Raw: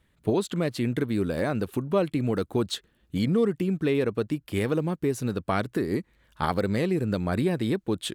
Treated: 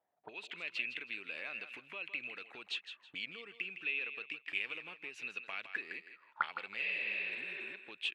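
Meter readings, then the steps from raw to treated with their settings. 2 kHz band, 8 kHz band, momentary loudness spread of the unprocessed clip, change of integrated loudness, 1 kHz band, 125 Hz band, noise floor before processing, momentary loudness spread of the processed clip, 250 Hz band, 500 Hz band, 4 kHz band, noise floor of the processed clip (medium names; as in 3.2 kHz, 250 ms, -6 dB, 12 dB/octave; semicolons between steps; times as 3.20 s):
+0.5 dB, under -20 dB, 5 LU, -12.5 dB, -13.5 dB, under -35 dB, -68 dBFS, 10 LU, -33.5 dB, -28.0 dB, -5.5 dB, -69 dBFS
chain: high-pass 240 Hz 6 dB/octave; spectral replace 6.84–7.71 s, 340–5400 Hz both; treble shelf 11 kHz +10 dB; level rider gain up to 9.5 dB; in parallel at +2.5 dB: peak limiter -11.5 dBFS, peak gain reduction 9 dB; on the sum: compression, threshold -14 dBFS, peak gain reduction 8.5 dB; auto-wah 720–2600 Hz, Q 13, up, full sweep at -17.5 dBFS; distance through air 70 m; on a send: thinning echo 161 ms, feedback 25%, high-pass 420 Hz, level -9.5 dB; on the sum: trim +1 dB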